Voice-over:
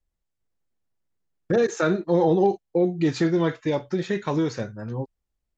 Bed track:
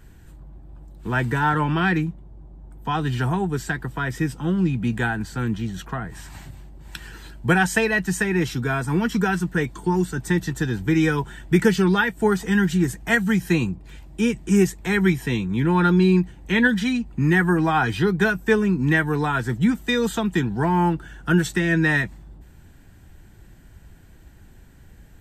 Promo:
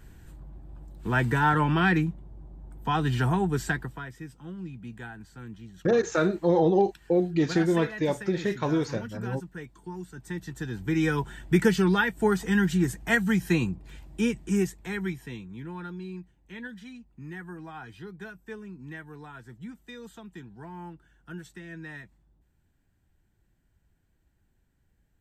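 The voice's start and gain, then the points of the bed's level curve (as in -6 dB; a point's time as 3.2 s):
4.35 s, -2.0 dB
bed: 3.75 s -2 dB
4.15 s -17.5 dB
10.02 s -17.5 dB
11.18 s -4 dB
14.17 s -4 dB
15.99 s -22 dB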